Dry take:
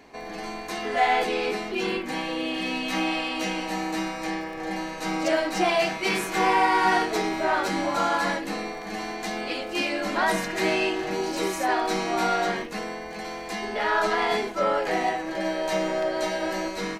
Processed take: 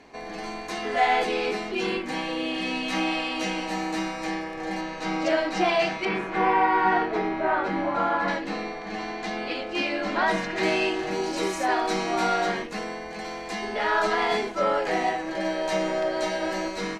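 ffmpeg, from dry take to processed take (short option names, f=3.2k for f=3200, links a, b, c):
-af "asetnsamples=n=441:p=0,asendcmd='4.81 lowpass f 5200;6.05 lowpass f 2100;8.28 lowpass f 4600;10.63 lowpass f 9000',lowpass=8.9k"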